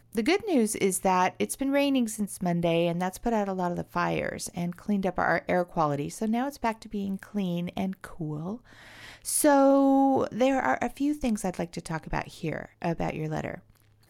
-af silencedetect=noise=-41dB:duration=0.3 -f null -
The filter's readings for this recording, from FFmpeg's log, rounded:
silence_start: 13.58
silence_end: 14.09 | silence_duration: 0.51